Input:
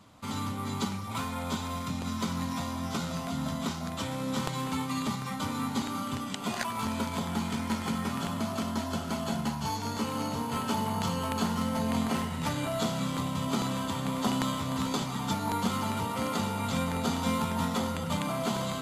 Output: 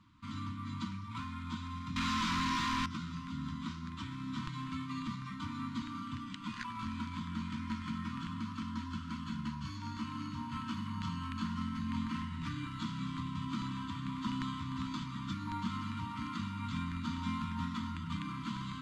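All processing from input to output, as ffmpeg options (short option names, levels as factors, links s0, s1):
-filter_complex "[0:a]asettb=1/sr,asplit=3[s0][s1][s2];[s0]atrim=end=1.964[s3];[s1]atrim=start=1.96:end=2.86,asetpts=PTS-STARTPTS,afade=t=in:d=0.004:c=qsin,afade=t=out:st=0.896:d=0.004:c=qsin,highshelf=f=7800:g=9,asplit=2[s4][s5];[s5]highpass=f=720:p=1,volume=79.4,asoftclip=type=tanh:threshold=0.133[s6];[s4][s6]amix=inputs=2:normalize=0,lowpass=f=7600:p=1,volume=0.501[s7];[s2]atrim=start=2.856[s8];[s3][s7]acrossfade=d=0.004:c1=hsin:c2=qsin[s9];[s9][s8]acrossfade=d=0.004:c1=qsin:c2=hsin,lowpass=4100,afftfilt=real='re*(1-between(b*sr/4096,340,920))':imag='im*(1-between(b*sr/4096,340,920))':win_size=4096:overlap=0.75,lowshelf=f=75:g=8.5,volume=0.398"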